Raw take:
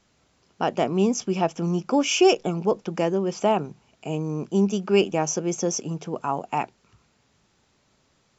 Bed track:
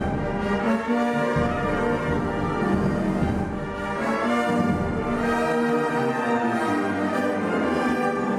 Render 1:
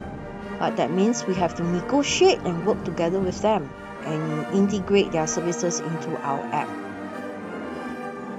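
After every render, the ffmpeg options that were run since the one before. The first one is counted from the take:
ffmpeg -i in.wav -i bed.wav -filter_complex "[1:a]volume=-9.5dB[link_01];[0:a][link_01]amix=inputs=2:normalize=0" out.wav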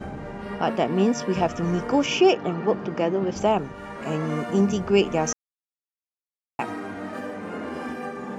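ffmpeg -i in.wav -filter_complex "[0:a]asettb=1/sr,asplit=3[link_01][link_02][link_03];[link_01]atrim=end=0.424[link_04];[link_02]atrim=start=0.42:end=1.33,asetpts=PTS-STARTPTS,afade=type=in:duration=0.004:curve=qsin,afade=type=out:start_time=0.906:duration=0.004:curve=qsin,equalizer=frequency=6600:width_type=o:width=0.21:gain=-11.5[link_05];[link_03]atrim=start=1.326[link_06];[link_04][link_05]acrossfade=duration=0.004:curve1=hsin:curve2=qsin[link_07];[link_07][link_06]acrossfade=duration=0.004:curve1=qsin:curve2=hsin,asettb=1/sr,asplit=3[link_08][link_09][link_10];[link_08]atrim=end=2.064[link_11];[link_09]atrim=start=2.06:end=3.36,asetpts=PTS-STARTPTS,afade=type=in:duration=0.004:curve=qsin,afade=type=out:start_time=1.296:duration=0.004:curve=qsin,highpass=160,lowpass=4100[link_12];[link_10]atrim=start=3.356[link_13];[link_11][link_12]acrossfade=duration=0.004:curve1=hsin:curve2=qsin[link_14];[link_14][link_13]acrossfade=duration=0.004:curve1=qsin:curve2=hsin,asplit=3[link_15][link_16][link_17];[link_15]atrim=end=5.33,asetpts=PTS-STARTPTS,afade=type=out:start_time=5.326:duration=0.004:curve=hsin[link_18];[link_16]atrim=start=5.33:end=6.59,asetpts=PTS-STARTPTS,volume=0[link_19];[link_17]atrim=start=6.59,asetpts=PTS-STARTPTS,afade=type=in:duration=0.004:curve=hsin[link_20];[link_18][link_19][link_20]concat=n=3:v=0:a=1" out.wav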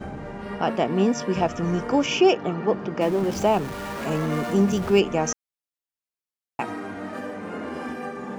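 ffmpeg -i in.wav -filter_complex "[0:a]asettb=1/sr,asplit=3[link_01][link_02][link_03];[link_01]atrim=end=3.014[link_04];[link_02]atrim=start=3.01:end=5,asetpts=PTS-STARTPTS,afade=type=in:duration=0.004:curve=qsin,afade=type=out:start_time=1.986:duration=0.004:curve=qsin,aeval=exprs='val(0)+0.5*0.0251*sgn(val(0))':channel_layout=same[link_05];[link_03]atrim=start=4.996[link_06];[link_04][link_05]acrossfade=duration=0.004:curve1=hsin:curve2=qsin[link_07];[link_07][link_06]acrossfade=duration=0.004:curve1=qsin:curve2=hsin" out.wav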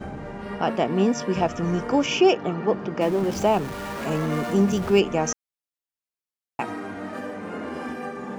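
ffmpeg -i in.wav -af anull out.wav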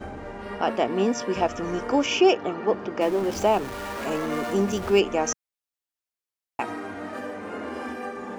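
ffmpeg -i in.wav -af "equalizer=frequency=160:width_type=o:width=0.51:gain=-14.5" out.wav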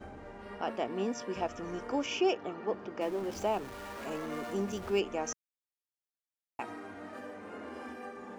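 ffmpeg -i in.wav -af "volume=-10.5dB" out.wav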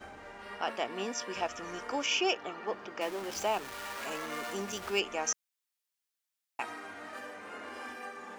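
ffmpeg -i in.wav -af "tiltshelf=frequency=690:gain=-8" out.wav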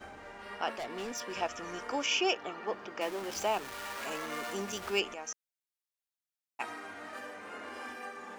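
ffmpeg -i in.wav -filter_complex "[0:a]asettb=1/sr,asplit=3[link_01][link_02][link_03];[link_01]atrim=end=0.754[link_04];[link_02]atrim=start=0.75:end=1.34,asetpts=PTS-STARTPTS,afade=type=in:duration=0.004:curve=qsin,afade=type=out:start_time=0.586:duration=0.004:curve=qsin,asoftclip=type=hard:threshold=-35dB[link_05];[link_03]atrim=start=1.336[link_06];[link_04][link_05]acrossfade=duration=0.004:curve1=hsin:curve2=qsin[link_07];[link_07][link_06]acrossfade=duration=0.004:curve1=qsin:curve2=hsin,asplit=3[link_08][link_09][link_10];[link_08]atrim=end=5.142[link_11];[link_09]atrim=start=5.138:end=6.602,asetpts=PTS-STARTPTS,volume=-9dB[link_12];[link_10]atrim=start=6.598[link_13];[link_11][link_12]acrossfade=duration=0.004:curve1=hsin:curve2=hsin[link_14];[link_14][link_13]acrossfade=duration=0.004:curve1=hsin:curve2=hsin" out.wav

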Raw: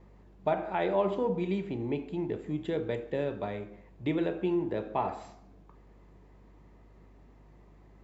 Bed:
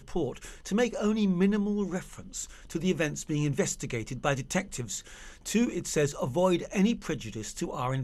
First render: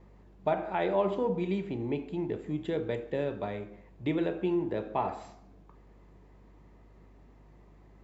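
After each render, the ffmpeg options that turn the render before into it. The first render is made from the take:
ffmpeg -i in.wav -af anull out.wav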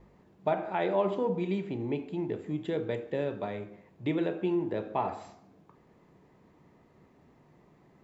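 ffmpeg -i in.wav -af "bandreject=frequency=50:width_type=h:width=4,bandreject=frequency=100:width_type=h:width=4" out.wav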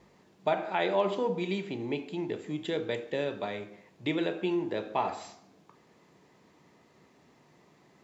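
ffmpeg -i in.wav -af "highpass=frequency=170:poles=1,equalizer=frequency=5600:width_type=o:width=2.5:gain=11" out.wav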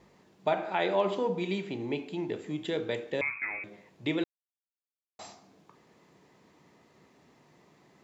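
ffmpeg -i in.wav -filter_complex "[0:a]asettb=1/sr,asplit=3[link_01][link_02][link_03];[link_01]atrim=end=3.214[link_04];[link_02]atrim=start=3.21:end=3.64,asetpts=PTS-STARTPTS,afade=type=in:duration=0.004:curve=qsin,afade=type=out:start_time=0.426:duration=0.004:curve=qsin,lowpass=frequency=2300:width_type=q:width=0.5098,lowpass=frequency=2300:width_type=q:width=0.6013,lowpass=frequency=2300:width_type=q:width=0.9,lowpass=frequency=2300:width_type=q:width=2.563,afreqshift=-2700[link_05];[link_03]atrim=start=3.636[link_06];[link_04][link_05]acrossfade=duration=0.004:curve1=hsin:curve2=qsin[link_07];[link_07][link_06]acrossfade=duration=0.004:curve1=qsin:curve2=hsin,asplit=3[link_08][link_09][link_10];[link_08]atrim=end=4.24,asetpts=PTS-STARTPTS,afade=type=out:start_time=4.236:duration=0.004:curve=hsin[link_11];[link_09]atrim=start=4.24:end=5.19,asetpts=PTS-STARTPTS,volume=0[link_12];[link_10]atrim=start=5.19,asetpts=PTS-STARTPTS,afade=type=in:duration=0.004:curve=hsin[link_13];[link_11][link_12][link_13]concat=n=3:v=0:a=1" out.wav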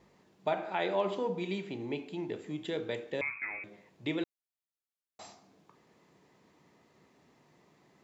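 ffmpeg -i in.wav -af "volume=-3.5dB" out.wav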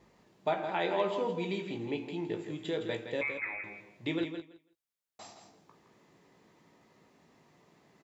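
ffmpeg -i in.wav -filter_complex "[0:a]asplit=2[link_01][link_02];[link_02]adelay=18,volume=-8dB[link_03];[link_01][link_03]amix=inputs=2:normalize=0,asplit=2[link_04][link_05];[link_05]aecho=0:1:165|330|495:0.398|0.0637|0.0102[link_06];[link_04][link_06]amix=inputs=2:normalize=0" out.wav

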